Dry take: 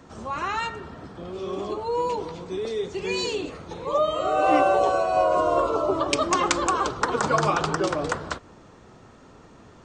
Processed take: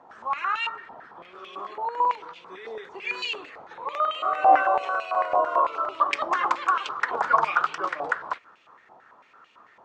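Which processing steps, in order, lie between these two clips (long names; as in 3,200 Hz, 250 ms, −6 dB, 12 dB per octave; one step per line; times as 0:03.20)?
regular buffer underruns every 0.10 s, samples 128, zero
band-pass on a step sequencer 9 Hz 820–2,700 Hz
level +8 dB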